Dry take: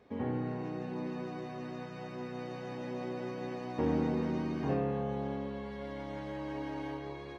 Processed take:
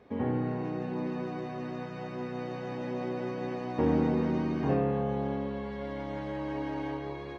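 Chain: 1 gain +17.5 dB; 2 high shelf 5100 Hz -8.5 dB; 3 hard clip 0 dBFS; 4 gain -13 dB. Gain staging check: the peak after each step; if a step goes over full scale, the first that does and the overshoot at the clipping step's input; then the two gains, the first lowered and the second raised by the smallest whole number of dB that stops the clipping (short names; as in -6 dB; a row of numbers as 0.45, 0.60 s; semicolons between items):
-2.0, -2.0, -2.0, -15.0 dBFS; no overload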